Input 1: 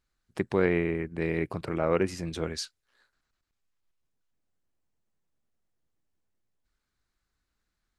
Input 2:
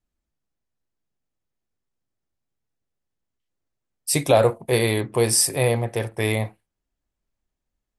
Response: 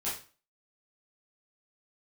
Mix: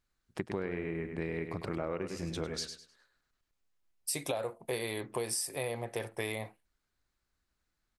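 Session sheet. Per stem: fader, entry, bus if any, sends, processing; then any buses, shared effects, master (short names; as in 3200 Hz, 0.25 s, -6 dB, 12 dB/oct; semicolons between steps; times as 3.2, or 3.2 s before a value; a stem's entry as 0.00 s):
-2.0 dB, 0.00 s, no send, echo send -9 dB, dry
-5.5 dB, 0.00 s, no send, no echo send, low shelf 190 Hz -11.5 dB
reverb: off
echo: feedback echo 0.102 s, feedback 27%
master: compressor 12:1, threshold -31 dBFS, peak gain reduction 14 dB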